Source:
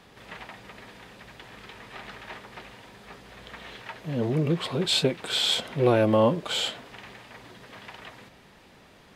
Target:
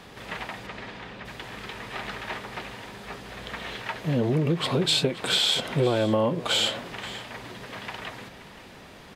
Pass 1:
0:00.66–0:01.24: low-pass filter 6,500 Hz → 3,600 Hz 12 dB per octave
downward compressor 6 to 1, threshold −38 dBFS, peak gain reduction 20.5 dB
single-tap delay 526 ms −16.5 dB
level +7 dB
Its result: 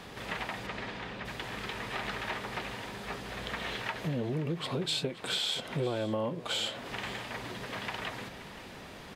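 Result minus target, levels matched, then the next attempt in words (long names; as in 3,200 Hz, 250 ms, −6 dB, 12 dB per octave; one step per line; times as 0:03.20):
downward compressor: peak gain reduction +9 dB
0:00.66–0:01.24: low-pass filter 6,500 Hz → 3,600 Hz 12 dB per octave
downward compressor 6 to 1, threshold −27 dBFS, peak gain reduction 11 dB
single-tap delay 526 ms −16.5 dB
level +7 dB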